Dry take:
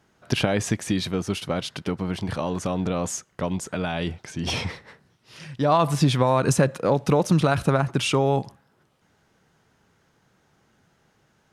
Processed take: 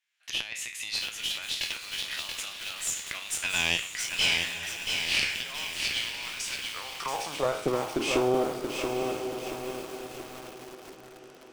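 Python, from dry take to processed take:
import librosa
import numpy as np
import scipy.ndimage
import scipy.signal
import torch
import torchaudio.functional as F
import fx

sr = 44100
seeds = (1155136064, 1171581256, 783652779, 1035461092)

y = fx.spec_trails(x, sr, decay_s=0.41)
y = fx.doppler_pass(y, sr, speed_mps=29, closest_m=9.4, pass_at_s=3.63)
y = fx.recorder_agc(y, sr, target_db=-22.0, rise_db_per_s=32.0, max_gain_db=30)
y = fx.hum_notches(y, sr, base_hz=60, count=5)
y = fx.filter_sweep_highpass(y, sr, from_hz=2500.0, to_hz=340.0, start_s=6.61, end_s=7.68, q=2.4)
y = fx.tube_stage(y, sr, drive_db=18.0, bias=0.75)
y = fx.echo_diffused(y, sr, ms=967, feedback_pct=43, wet_db=-9.0)
y = fx.echo_crushed(y, sr, ms=680, feedback_pct=55, bits=8, wet_db=-4.5)
y = y * librosa.db_to_amplitude(7.0)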